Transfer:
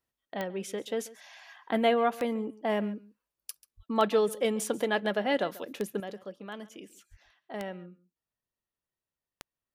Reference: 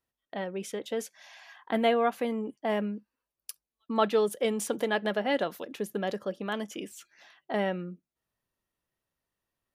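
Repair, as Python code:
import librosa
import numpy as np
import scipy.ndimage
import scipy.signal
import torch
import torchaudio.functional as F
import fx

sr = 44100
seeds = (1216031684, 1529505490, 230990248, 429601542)

y = fx.fix_declick_ar(x, sr, threshold=10.0)
y = fx.highpass(y, sr, hz=140.0, slope=24, at=(3.76, 3.88), fade=0.02)
y = fx.highpass(y, sr, hz=140.0, slope=24, at=(7.1, 7.22), fade=0.02)
y = fx.fix_echo_inverse(y, sr, delay_ms=138, level_db=-19.5)
y = fx.gain(y, sr, db=fx.steps((0.0, 0.0), (6.0, 8.5)))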